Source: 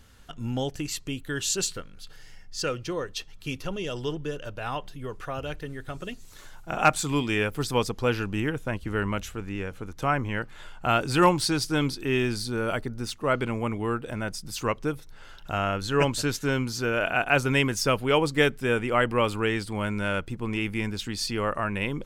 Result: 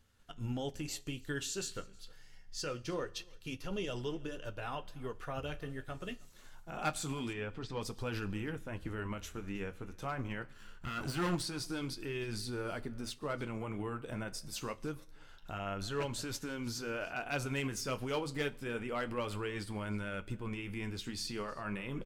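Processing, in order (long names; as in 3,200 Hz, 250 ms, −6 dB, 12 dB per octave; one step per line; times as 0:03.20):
0:10.52–0:11.35: lower of the sound and its delayed copy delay 0.67 ms
hard clipping −15 dBFS, distortion −18 dB
brickwall limiter −24.5 dBFS, peak gain reduction 9.5 dB
single-tap delay 316 ms −22 dB
flanger 0.25 Hz, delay 9.1 ms, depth 7 ms, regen −52%
0:07.33–0:07.81: high-frequency loss of the air 160 metres
four-comb reverb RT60 0.77 s, combs from 26 ms, DRR 17 dB
expander for the loud parts 1.5 to 1, over −57 dBFS
level +1.5 dB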